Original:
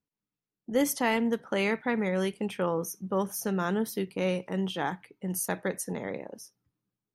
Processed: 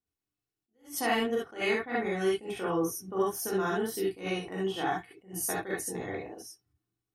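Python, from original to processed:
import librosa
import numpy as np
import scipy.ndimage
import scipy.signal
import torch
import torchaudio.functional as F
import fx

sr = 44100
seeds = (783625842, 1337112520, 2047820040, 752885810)

y = x + 0.59 * np.pad(x, (int(2.7 * sr / 1000.0), 0))[:len(x)]
y = fx.rev_gated(y, sr, seeds[0], gate_ms=90, shape='rising', drr_db=-4.5)
y = fx.attack_slew(y, sr, db_per_s=180.0)
y = F.gain(torch.from_numpy(y), -6.5).numpy()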